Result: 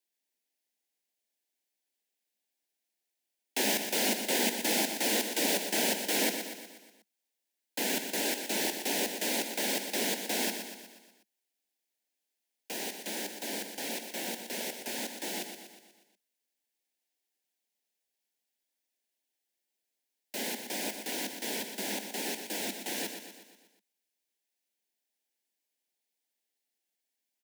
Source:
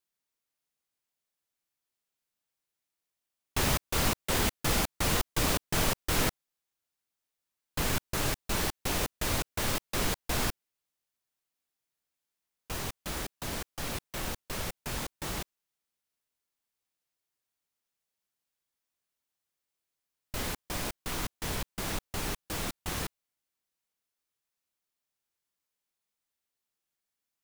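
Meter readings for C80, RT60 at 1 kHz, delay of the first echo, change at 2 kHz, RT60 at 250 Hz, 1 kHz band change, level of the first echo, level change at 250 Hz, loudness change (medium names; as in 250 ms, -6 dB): no reverb, no reverb, 121 ms, +0.5 dB, no reverb, -2.5 dB, -8.0 dB, +0.5 dB, +0.5 dB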